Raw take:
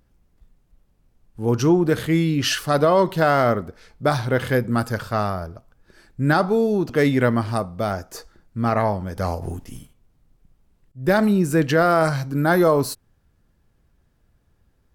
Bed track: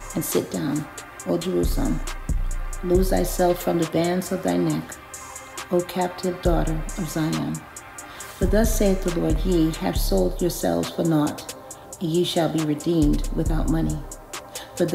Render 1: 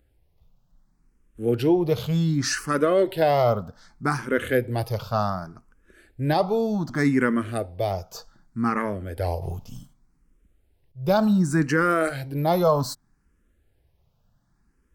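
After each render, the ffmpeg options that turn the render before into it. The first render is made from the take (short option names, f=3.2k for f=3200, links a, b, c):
-filter_complex "[0:a]asplit=2[a][b];[b]afreqshift=0.66[c];[a][c]amix=inputs=2:normalize=1"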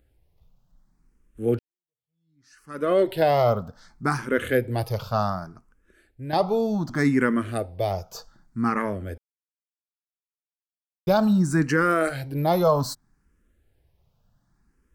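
-filter_complex "[0:a]asplit=5[a][b][c][d][e];[a]atrim=end=1.59,asetpts=PTS-STARTPTS,afade=t=out:st=1.586:d=0.004:c=hsin[f];[b]atrim=start=1.59:end=6.33,asetpts=PTS-STARTPTS,afade=t=in:d=1.32:c=exp,afade=t=out:st=3.71:d=1.03:silence=0.281838[g];[c]atrim=start=6.33:end=9.18,asetpts=PTS-STARTPTS,afade=t=in:d=0.004:c=hsin:silence=0.281838,afade=t=out:st=2.846:d=0.004:c=hsin[h];[d]atrim=start=9.18:end=11.07,asetpts=PTS-STARTPTS,volume=0[i];[e]atrim=start=11.07,asetpts=PTS-STARTPTS,afade=t=in:d=0.004:c=hsin[j];[f][g][h][i][j]concat=n=5:v=0:a=1"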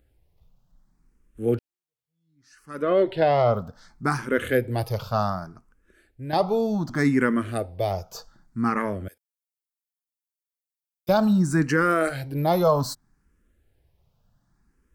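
-filter_complex "[0:a]asettb=1/sr,asplit=3[a][b][c];[a]atrim=end=2.824[d];[b]atrim=start=2.82:end=3.54,asetpts=PTS-STARTPTS,afade=t=in:d=0.004:c=qsin,afade=t=out:st=0.716:d=0.004:c=qsin,lowpass=4k[e];[c]atrim=start=3.536[f];[d][e]acrossfade=d=0.004:c1=hsin:c2=qsin[g];[g][f]acrossfade=d=0.004:c1=qsin:c2=hsin,asettb=1/sr,asplit=3[h][i][j];[h]atrim=end=9.084[k];[i]atrim=start=9.08:end=11.09,asetpts=PTS-STARTPTS,afade=t=in:d=0.004:c=qsin,afade=t=out:st=2.006:d=0.004:c=qsin,aderivative[l];[j]atrim=start=11.086[m];[k][l]acrossfade=d=0.004:c1=hsin:c2=qsin[n];[n][m]acrossfade=d=0.004:c1=qsin:c2=hsin"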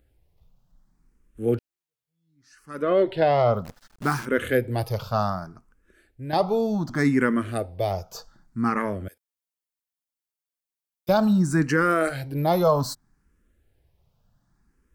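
-filter_complex "[0:a]asplit=3[a][b][c];[a]afade=t=out:st=3.64:d=0.02[d];[b]acrusher=bits=7:dc=4:mix=0:aa=0.000001,afade=t=in:st=3.64:d=0.02,afade=t=out:st=4.24:d=0.02[e];[c]afade=t=in:st=4.24:d=0.02[f];[d][e][f]amix=inputs=3:normalize=0"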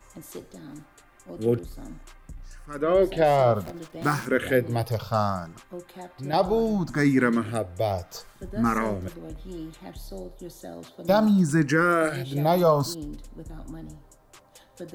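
-filter_complex "[1:a]volume=-17.5dB[a];[0:a][a]amix=inputs=2:normalize=0"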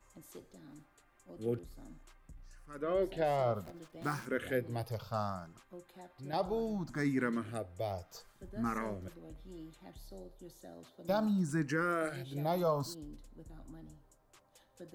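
-af "volume=-12dB"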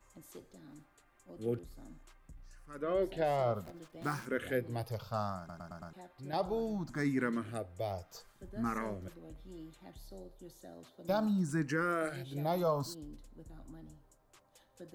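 -filter_complex "[0:a]asplit=6[a][b][c][d][e][f];[a]atrim=end=5.492[g];[b]atrim=start=5.378:end=5.492[h];[c]atrim=start=5.378:end=5.492[i];[d]atrim=start=5.378:end=5.492[j];[e]atrim=start=5.378:end=5.492[k];[f]atrim=start=5.928[l];[g][h]acrossfade=d=0.004:c1=hsin:c2=hsin[m];[m][i]acrossfade=d=0.004:c1=hsin:c2=hsin[n];[n][j]acrossfade=d=0.004:c1=hsin:c2=hsin[o];[o][k]acrossfade=d=0.004:c1=hsin:c2=hsin[p];[p][l]acrossfade=d=0.004:c1=hsin:c2=hsin"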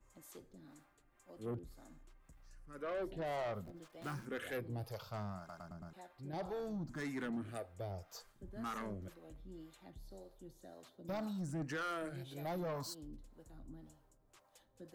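-filter_complex "[0:a]acrossover=split=440[a][b];[a]aeval=exprs='val(0)*(1-0.7/2+0.7/2*cos(2*PI*1.9*n/s))':c=same[c];[b]aeval=exprs='val(0)*(1-0.7/2-0.7/2*cos(2*PI*1.9*n/s))':c=same[d];[c][d]amix=inputs=2:normalize=0,asoftclip=type=tanh:threshold=-35.5dB"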